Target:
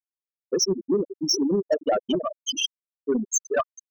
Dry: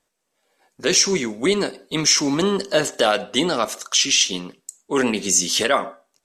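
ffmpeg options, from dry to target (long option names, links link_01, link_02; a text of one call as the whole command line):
ffmpeg -i in.wav -af "asoftclip=type=hard:threshold=-7dB,atempo=1.6,aecho=1:1:417|834|1251|1668|2085:0.355|0.163|0.0751|0.0345|0.0159,afftfilt=real='re*gte(hypot(re,im),0.501)':imag='im*gte(hypot(re,im),0.501)':win_size=1024:overlap=0.75,asoftclip=type=tanh:threshold=-13.5dB" out.wav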